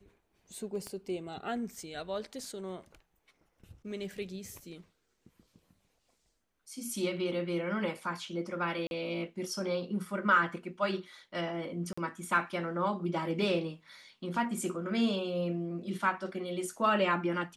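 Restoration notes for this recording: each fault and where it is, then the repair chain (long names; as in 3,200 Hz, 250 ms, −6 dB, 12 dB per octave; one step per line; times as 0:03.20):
0:00.87: click −26 dBFS
0:08.87–0:08.91: drop-out 41 ms
0:11.93–0:11.97: drop-out 45 ms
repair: click removal
repair the gap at 0:08.87, 41 ms
repair the gap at 0:11.93, 45 ms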